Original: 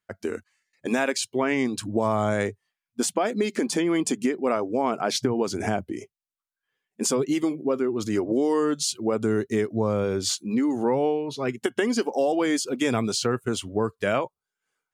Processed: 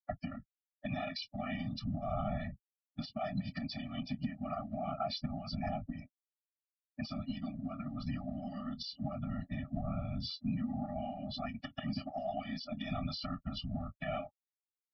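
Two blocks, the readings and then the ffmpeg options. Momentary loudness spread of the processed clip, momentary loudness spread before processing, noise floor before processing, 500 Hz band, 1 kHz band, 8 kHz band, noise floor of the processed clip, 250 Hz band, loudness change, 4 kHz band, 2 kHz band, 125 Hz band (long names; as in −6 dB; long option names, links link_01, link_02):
6 LU, 5 LU, below −85 dBFS, −19.0 dB, −12.0 dB, below −30 dB, below −85 dBFS, −13.5 dB, −14.5 dB, −11.5 dB, −16.5 dB, −6.0 dB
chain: -filter_complex "[0:a]adynamicequalizer=threshold=0.00562:dfrequency=1800:dqfactor=1.5:tfrequency=1800:tqfactor=1.5:attack=5:release=100:ratio=0.375:range=3:mode=cutabove:tftype=bell,afftfilt=real='re*gte(hypot(re,im),0.00891)':imag='im*gte(hypot(re,im),0.00891)':win_size=1024:overlap=0.75,asplit=2[link_01][link_02];[link_02]adelay=20,volume=-12.5dB[link_03];[link_01][link_03]amix=inputs=2:normalize=0,asubboost=boost=5:cutoff=51,afftfilt=real='hypot(re,im)*cos(2*PI*random(0))':imag='hypot(re,im)*sin(2*PI*random(1))':win_size=512:overlap=0.75,acrossover=split=150|3000[link_04][link_05][link_06];[link_05]acompressor=threshold=-31dB:ratio=8[link_07];[link_04][link_07][link_06]amix=inputs=3:normalize=0,alimiter=level_in=5.5dB:limit=-24dB:level=0:latency=1:release=294,volume=-5.5dB,acompressor=threshold=-43dB:ratio=6,aresample=11025,aresample=44100,afftfilt=real='re*eq(mod(floor(b*sr/1024/280),2),0)':imag='im*eq(mod(floor(b*sr/1024/280),2),0)':win_size=1024:overlap=0.75,volume=12dB"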